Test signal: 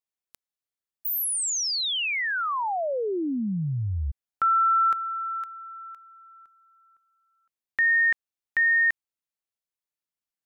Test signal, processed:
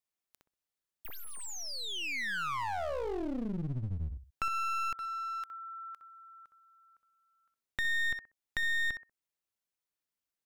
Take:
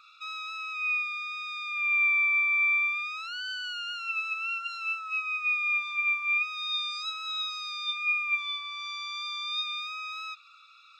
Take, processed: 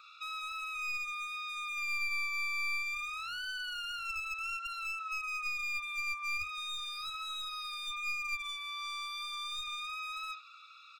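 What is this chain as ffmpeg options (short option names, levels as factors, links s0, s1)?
-filter_complex "[0:a]asplit=2[s0][s1];[s1]adelay=63,lowpass=f=1100:p=1,volume=0.562,asplit=2[s2][s3];[s3]adelay=63,lowpass=f=1100:p=1,volume=0.23,asplit=2[s4][s5];[s5]adelay=63,lowpass=f=1100:p=1,volume=0.23[s6];[s0][s2][s4][s6]amix=inputs=4:normalize=0,aeval=exprs='clip(val(0),-1,0.0224)':c=same,acrossover=split=2400|5000[s7][s8][s9];[s7]acompressor=threshold=0.00708:ratio=1.5[s10];[s8]acompressor=threshold=0.00398:ratio=3[s11];[s9]acompressor=threshold=0.00282:ratio=6[s12];[s10][s11][s12]amix=inputs=3:normalize=0"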